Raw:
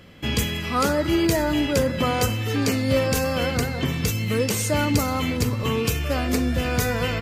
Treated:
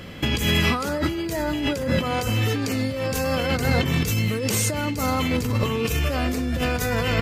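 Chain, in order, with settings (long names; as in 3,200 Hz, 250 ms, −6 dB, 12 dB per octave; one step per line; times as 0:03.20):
compressor whose output falls as the input rises −28 dBFS, ratio −1
level +4.5 dB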